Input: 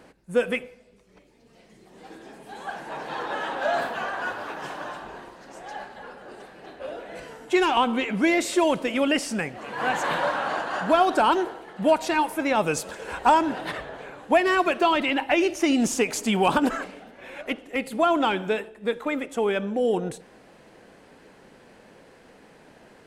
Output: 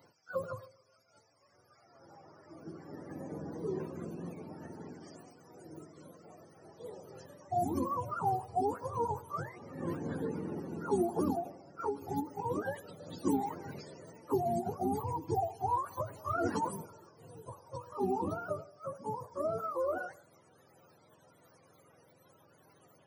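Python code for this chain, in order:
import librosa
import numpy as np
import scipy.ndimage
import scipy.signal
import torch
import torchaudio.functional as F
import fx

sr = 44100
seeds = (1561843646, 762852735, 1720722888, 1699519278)

y = fx.octave_mirror(x, sr, pivot_hz=510.0)
y = fx.riaa(y, sr, side='recording')
y = fx.end_taper(y, sr, db_per_s=180.0)
y = y * librosa.db_to_amplitude(-6.0)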